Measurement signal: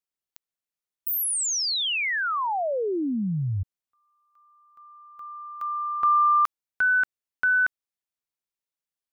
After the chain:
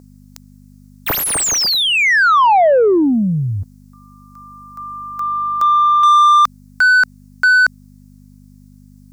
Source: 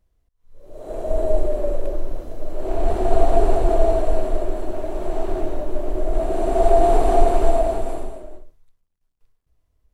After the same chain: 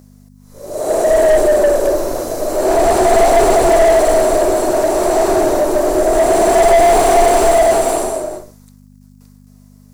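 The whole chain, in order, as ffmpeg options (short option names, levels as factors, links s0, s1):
-filter_complex "[0:a]aeval=exprs='val(0)+0.00398*(sin(2*PI*50*n/s)+sin(2*PI*2*50*n/s)/2+sin(2*PI*3*50*n/s)/3+sin(2*PI*4*50*n/s)/4+sin(2*PI*5*50*n/s)/5)':c=same,aexciter=amount=9.3:drive=4.8:freq=4600,asplit=2[s0][s1];[s1]highpass=f=720:p=1,volume=31.6,asoftclip=type=tanh:threshold=1[s2];[s0][s2]amix=inputs=2:normalize=0,lowpass=f=1600:p=1,volume=0.501,volume=0.891"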